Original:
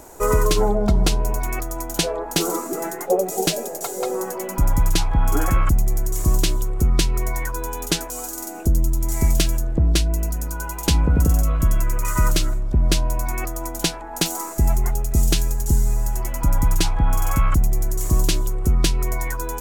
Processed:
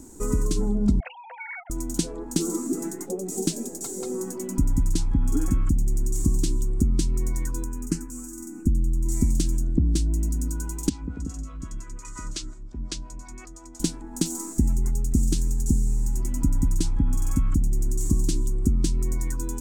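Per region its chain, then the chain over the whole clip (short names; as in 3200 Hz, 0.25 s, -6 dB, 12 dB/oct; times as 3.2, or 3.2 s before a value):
1–1.7 sine-wave speech + rippled Chebyshev high-pass 490 Hz, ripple 9 dB + tilt +2 dB/oct
7.64–9.06 high shelf 5600 Hz -7 dB + fixed phaser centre 1500 Hz, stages 4
10.89–13.8 three-band isolator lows -14 dB, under 530 Hz, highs -24 dB, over 7200 Hz + harmonic tremolo 5.7 Hz, crossover 400 Hz
whole clip: compressor 2.5:1, threshold -20 dBFS; EQ curve 160 Hz 0 dB, 260 Hz +9 dB, 620 Hz -20 dB, 900 Hz -14 dB, 2600 Hz -14 dB, 8300 Hz +1 dB, 12000 Hz -11 dB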